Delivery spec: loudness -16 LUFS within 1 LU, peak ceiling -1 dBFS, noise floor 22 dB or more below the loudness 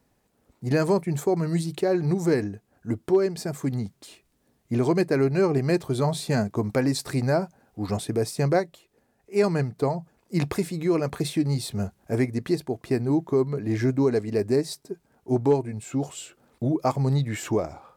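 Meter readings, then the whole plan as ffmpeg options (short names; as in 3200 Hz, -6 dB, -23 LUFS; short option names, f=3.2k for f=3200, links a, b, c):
loudness -25.5 LUFS; peak -9.5 dBFS; loudness target -16.0 LUFS
-> -af "volume=9.5dB,alimiter=limit=-1dB:level=0:latency=1"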